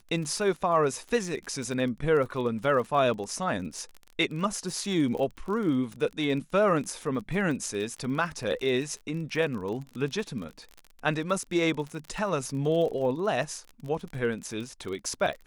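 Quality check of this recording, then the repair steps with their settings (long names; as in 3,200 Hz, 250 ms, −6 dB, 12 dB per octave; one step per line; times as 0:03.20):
surface crackle 33 per second −34 dBFS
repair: click removal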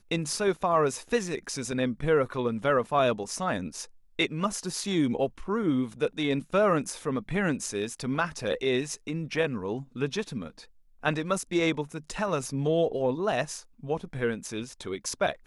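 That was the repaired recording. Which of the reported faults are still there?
none of them is left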